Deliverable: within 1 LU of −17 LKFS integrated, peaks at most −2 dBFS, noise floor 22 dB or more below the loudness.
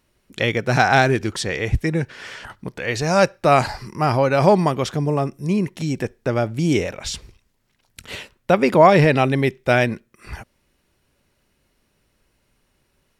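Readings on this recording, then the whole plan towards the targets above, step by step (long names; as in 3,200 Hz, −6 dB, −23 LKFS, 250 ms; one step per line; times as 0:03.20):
integrated loudness −19.0 LKFS; sample peak −1.5 dBFS; target loudness −17.0 LKFS
→ level +2 dB
brickwall limiter −2 dBFS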